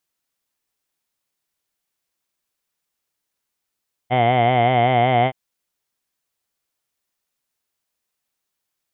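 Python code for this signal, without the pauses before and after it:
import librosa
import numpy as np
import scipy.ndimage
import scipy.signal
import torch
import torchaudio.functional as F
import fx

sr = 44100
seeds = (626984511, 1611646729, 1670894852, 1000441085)

y = fx.formant_vowel(sr, seeds[0], length_s=1.22, hz=121.0, glide_st=0.5, vibrato_hz=5.3, vibrato_st=0.9, f1_hz=720.0, f2_hz=2100.0, f3_hz=3100.0)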